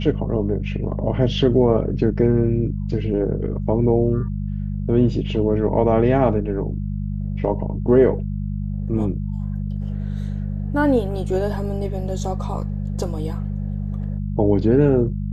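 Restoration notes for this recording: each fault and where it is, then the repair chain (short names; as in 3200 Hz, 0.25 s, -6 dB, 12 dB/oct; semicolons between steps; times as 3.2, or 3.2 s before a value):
hum 50 Hz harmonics 4 -25 dBFS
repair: de-hum 50 Hz, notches 4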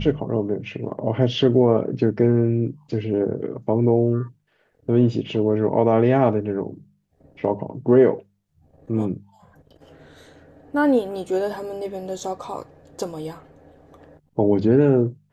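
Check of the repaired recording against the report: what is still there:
none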